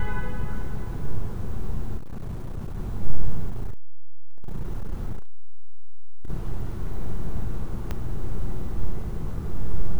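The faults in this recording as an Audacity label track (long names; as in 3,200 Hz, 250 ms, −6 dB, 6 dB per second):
1.970000	2.770000	clipping −27 dBFS
3.500000	6.300000	clipping −20.5 dBFS
7.910000	7.910000	click −16 dBFS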